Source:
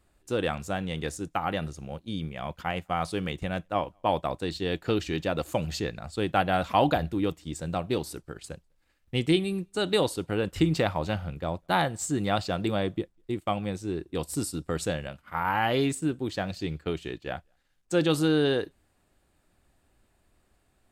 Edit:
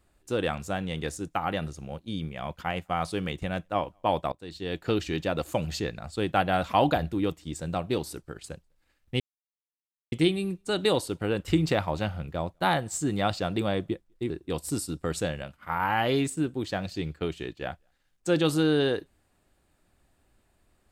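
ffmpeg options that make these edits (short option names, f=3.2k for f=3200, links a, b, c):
-filter_complex "[0:a]asplit=4[a][b][c][d];[a]atrim=end=4.32,asetpts=PTS-STARTPTS,afade=t=out:st=4.316:d=0.004:c=hsin:silence=0.0841395[e];[b]atrim=start=4.32:end=9.2,asetpts=PTS-STARTPTS,afade=t=in:d=0.57:silence=0.0841395,afade=t=out:st=4.876:d=0.004:c=hsin,apad=pad_dur=0.92[f];[c]atrim=start=9.2:end=13.382,asetpts=PTS-STARTPTS,afade=t=in:d=0.004:c=hsin[g];[d]atrim=start=13.948[h];[e][f][g]concat=n=3:v=0:a=1[i];[i][h]acrossfade=d=0.004:c1=hsin:c2=hsin"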